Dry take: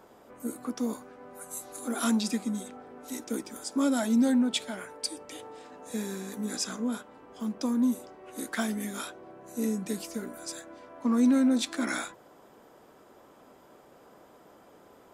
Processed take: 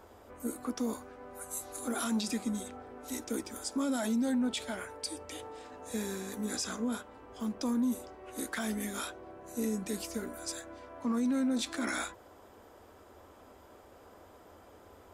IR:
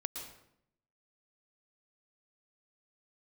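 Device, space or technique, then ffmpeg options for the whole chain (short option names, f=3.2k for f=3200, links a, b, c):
car stereo with a boomy subwoofer: -af "lowshelf=f=110:t=q:w=3:g=8,alimiter=level_in=0.5dB:limit=-24dB:level=0:latency=1:release=23,volume=-0.5dB"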